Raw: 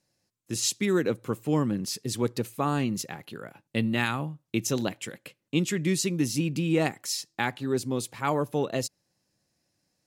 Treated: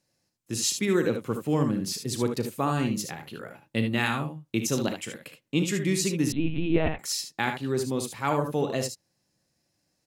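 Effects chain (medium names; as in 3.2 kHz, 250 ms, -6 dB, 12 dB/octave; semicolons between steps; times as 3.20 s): on a send: early reflections 36 ms -13.5 dB, 61 ms -11.5 dB, 74 ms -8 dB; 6.32–6.99 s: on the sum: LPC vocoder at 8 kHz pitch kept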